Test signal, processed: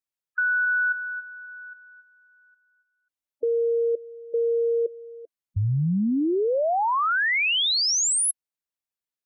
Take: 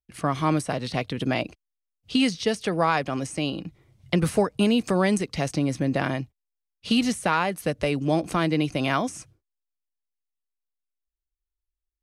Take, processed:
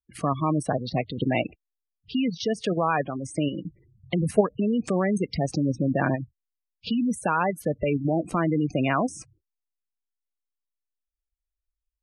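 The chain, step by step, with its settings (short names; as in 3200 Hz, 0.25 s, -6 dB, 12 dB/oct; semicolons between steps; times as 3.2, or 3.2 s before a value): level quantiser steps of 9 dB; spectral gate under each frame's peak -15 dB strong; gain +4.5 dB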